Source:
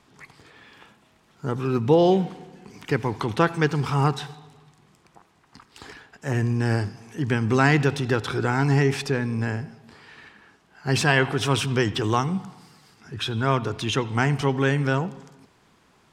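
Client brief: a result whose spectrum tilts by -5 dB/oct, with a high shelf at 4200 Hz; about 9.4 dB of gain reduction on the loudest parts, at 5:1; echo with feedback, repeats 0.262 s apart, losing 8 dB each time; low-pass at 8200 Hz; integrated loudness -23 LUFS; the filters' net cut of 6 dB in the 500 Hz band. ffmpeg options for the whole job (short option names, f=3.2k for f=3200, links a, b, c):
-af "lowpass=8.2k,equalizer=f=500:t=o:g=-8,highshelf=f=4.2k:g=7,acompressor=threshold=-26dB:ratio=5,aecho=1:1:262|524|786|1048|1310:0.398|0.159|0.0637|0.0255|0.0102,volume=7.5dB"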